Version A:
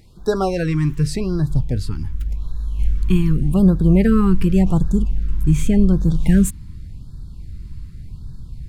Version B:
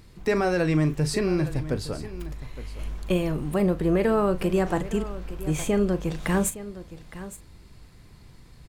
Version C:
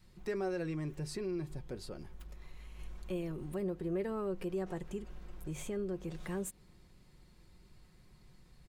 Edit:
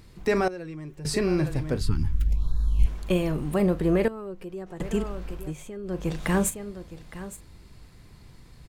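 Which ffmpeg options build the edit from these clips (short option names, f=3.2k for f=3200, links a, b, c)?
-filter_complex "[2:a]asplit=3[a][b][c];[1:a]asplit=5[d][e][f][g][h];[d]atrim=end=0.482[i];[a]atrim=start=0.478:end=1.052[j];[e]atrim=start=1.048:end=1.812[k];[0:a]atrim=start=1.808:end=2.862[l];[f]atrim=start=2.858:end=4.082[m];[b]atrim=start=4.078:end=4.802[n];[g]atrim=start=4.798:end=5.57[o];[c]atrim=start=5.33:end=6.07[p];[h]atrim=start=5.83[q];[i][j]acrossfade=d=0.004:c1=hsin:c2=hsin[r];[r][k]acrossfade=d=0.004:c1=hsin:c2=hsin[s];[s][l]acrossfade=d=0.004:c1=hsin:c2=hsin[t];[t][m]acrossfade=d=0.004:c1=hsin:c2=hsin[u];[u][n]acrossfade=d=0.004:c1=hsin:c2=hsin[v];[v][o]acrossfade=d=0.004:c1=hsin:c2=hsin[w];[w][p]acrossfade=d=0.24:c1=tri:c2=tri[x];[x][q]acrossfade=d=0.24:c1=tri:c2=tri"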